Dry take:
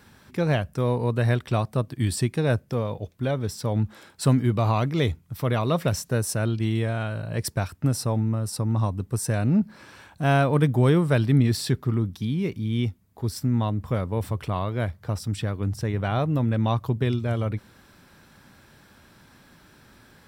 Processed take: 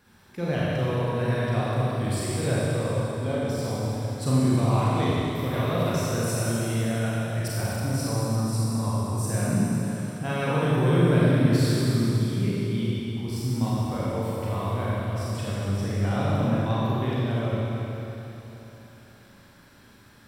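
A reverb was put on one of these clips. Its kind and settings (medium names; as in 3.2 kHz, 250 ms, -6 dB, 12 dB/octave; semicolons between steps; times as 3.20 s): Schroeder reverb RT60 3.4 s, combs from 31 ms, DRR -8 dB; trim -8.5 dB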